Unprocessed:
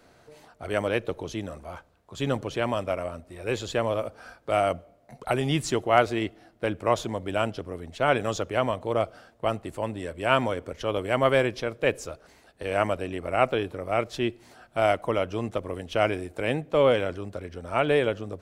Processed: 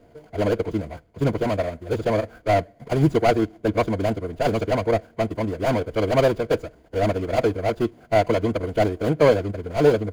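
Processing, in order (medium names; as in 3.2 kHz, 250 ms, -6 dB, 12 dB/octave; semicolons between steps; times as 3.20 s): median filter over 41 samples; rippled EQ curve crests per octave 1.8, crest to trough 6 dB; time stretch by phase-locked vocoder 0.55×; trim +8.5 dB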